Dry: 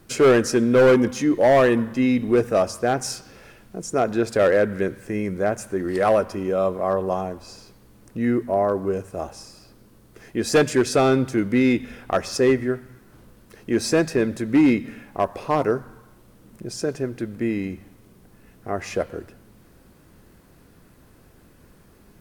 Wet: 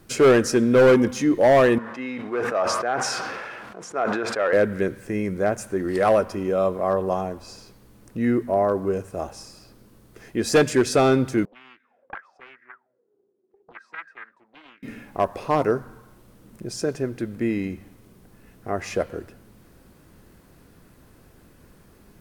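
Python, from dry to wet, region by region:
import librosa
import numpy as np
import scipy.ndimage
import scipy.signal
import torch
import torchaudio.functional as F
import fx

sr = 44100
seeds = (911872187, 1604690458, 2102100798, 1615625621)

y = fx.chain(x, sr, fx.law_mismatch(coded='mu'),
    fx.bandpass_q(hz=1200.0, q=1.1),
    fx.sustainer(db_per_s=24.0), at=(1.78, 4.53))
y = fx.chain(y, sr, fx.highpass(hz=140.0, slope=12),
    fx.auto_wah(base_hz=370.0, top_hz=1600.0, q=20.0, full_db=-17.5, direction='up'),
    fx.doppler_dist(depth_ms=0.67), at=(11.45, 14.83))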